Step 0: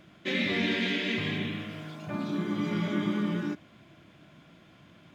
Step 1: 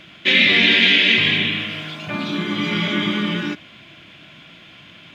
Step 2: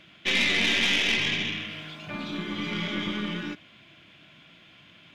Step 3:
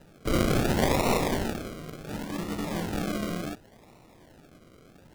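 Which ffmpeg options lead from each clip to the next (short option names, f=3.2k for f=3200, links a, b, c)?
-af "equalizer=f=2.9k:w=0.83:g=14.5,volume=6dB"
-af "aeval=exprs='(tanh(2.51*val(0)+0.6)-tanh(0.6))/2.51':c=same,volume=-6.5dB"
-af "acrusher=samples=39:mix=1:aa=0.000001:lfo=1:lforange=23.4:lforate=0.69"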